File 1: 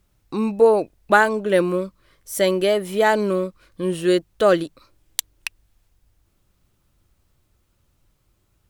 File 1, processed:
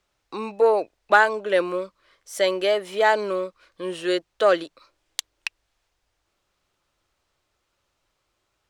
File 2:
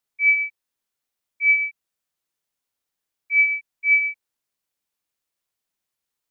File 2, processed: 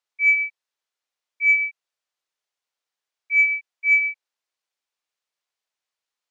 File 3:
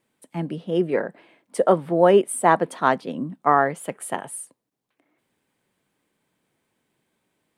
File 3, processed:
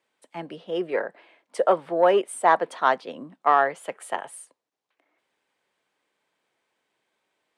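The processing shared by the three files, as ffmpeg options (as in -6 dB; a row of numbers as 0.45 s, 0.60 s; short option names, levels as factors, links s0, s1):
-filter_complex "[0:a]aeval=exprs='0.891*(cos(1*acos(clip(val(0)/0.891,-1,1)))-cos(1*PI/2))+0.0316*(cos(5*acos(clip(val(0)/0.891,-1,1)))-cos(5*PI/2))':c=same,acrossover=split=410 7400:gain=0.141 1 0.178[s0][s1][s2];[s0][s1][s2]amix=inputs=3:normalize=0,volume=0.891"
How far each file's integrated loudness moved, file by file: -2.0 LU, 0.0 LU, -2.0 LU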